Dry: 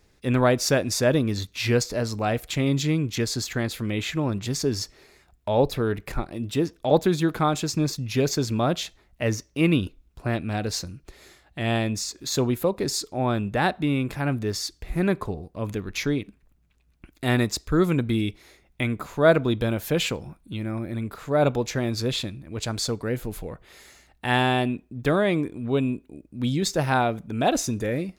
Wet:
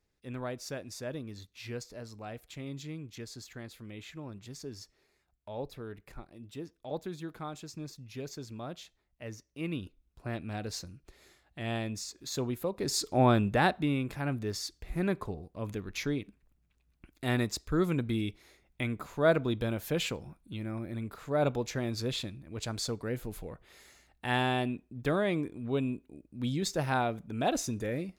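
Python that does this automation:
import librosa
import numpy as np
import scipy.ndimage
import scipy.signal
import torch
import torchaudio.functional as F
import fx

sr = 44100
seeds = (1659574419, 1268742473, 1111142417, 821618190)

y = fx.gain(x, sr, db=fx.line((9.31, -18.0), (10.42, -10.0), (12.72, -10.0), (13.16, 2.0), (14.05, -7.5)))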